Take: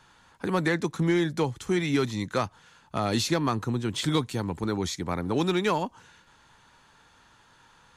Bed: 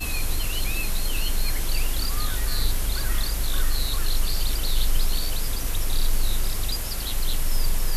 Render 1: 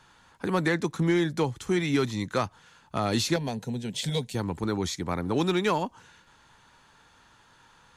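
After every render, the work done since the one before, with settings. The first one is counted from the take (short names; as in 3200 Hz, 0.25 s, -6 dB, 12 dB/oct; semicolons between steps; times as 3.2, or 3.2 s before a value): 3.36–4.35 fixed phaser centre 320 Hz, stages 6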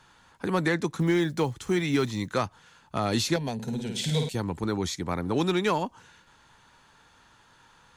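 1–2.32 block floating point 7-bit; 3.54–4.29 flutter echo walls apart 9 m, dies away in 0.62 s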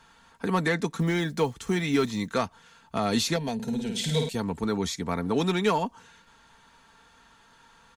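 comb 4.4 ms, depth 47%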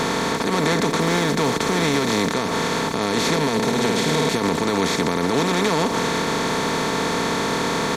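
per-bin compression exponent 0.2; limiter -10.5 dBFS, peak gain reduction 10 dB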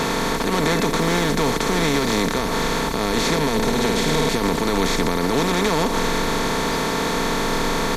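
add bed -8.5 dB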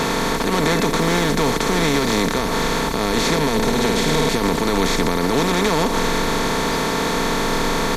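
gain +1.5 dB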